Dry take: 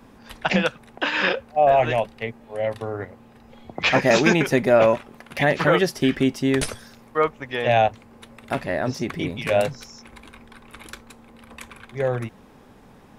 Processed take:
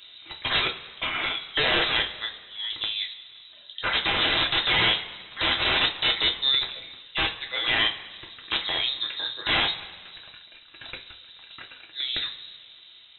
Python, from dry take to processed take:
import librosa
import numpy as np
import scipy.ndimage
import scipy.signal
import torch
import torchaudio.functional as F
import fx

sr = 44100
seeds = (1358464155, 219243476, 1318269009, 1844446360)

y = fx.tremolo_shape(x, sr, shape='saw_down', hz=0.74, depth_pct=65)
y = (np.mod(10.0 ** (18.0 / 20.0) * y + 1.0, 2.0) - 1.0) / 10.0 ** (18.0 / 20.0)
y = fx.rev_double_slope(y, sr, seeds[0], early_s=0.23, late_s=1.7, knee_db=-18, drr_db=1.5)
y = fx.freq_invert(y, sr, carrier_hz=3900)